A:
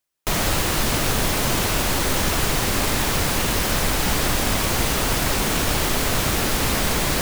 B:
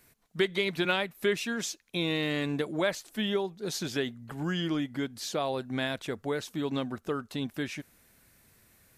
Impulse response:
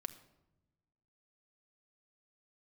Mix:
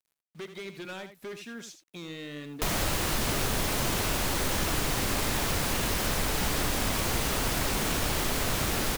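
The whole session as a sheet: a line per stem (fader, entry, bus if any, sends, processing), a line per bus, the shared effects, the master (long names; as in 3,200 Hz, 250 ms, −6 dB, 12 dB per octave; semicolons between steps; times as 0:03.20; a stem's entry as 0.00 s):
−2.0 dB, 2.35 s, no send, no echo send, no processing
−8.5 dB, 0.00 s, no send, echo send −10 dB, high-shelf EQ 3,200 Hz −3 dB; hard clipping −27.5 dBFS, distortion −11 dB; bit reduction 9 bits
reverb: not used
echo: single-tap delay 81 ms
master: downward compressor 1.5 to 1, threshold −34 dBFS, peak gain reduction 6 dB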